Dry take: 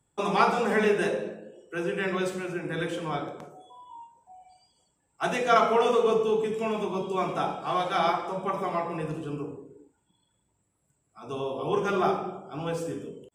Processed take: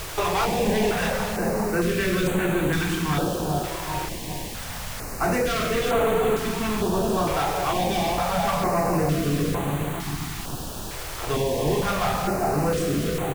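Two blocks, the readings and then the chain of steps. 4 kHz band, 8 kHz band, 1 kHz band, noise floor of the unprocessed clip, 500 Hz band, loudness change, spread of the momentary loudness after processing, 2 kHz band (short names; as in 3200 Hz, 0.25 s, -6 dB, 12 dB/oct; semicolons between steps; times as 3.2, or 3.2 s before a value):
+8.0 dB, +15.0 dB, +2.5 dB, -74 dBFS, +2.5 dB, +3.0 dB, 9 LU, +4.5 dB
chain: doubler 28 ms -11 dB; on a send: dark delay 0.398 s, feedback 60%, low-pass 750 Hz, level -8 dB; on the sum: sample leveller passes 5; compressor, threshold -15 dBFS, peak gain reduction 6.5 dB; low shelf 130 Hz +9.5 dB; echo 0.397 s -8 dB; added noise pink -26 dBFS; stepped notch 2.2 Hz 220–5200 Hz; gain -6.5 dB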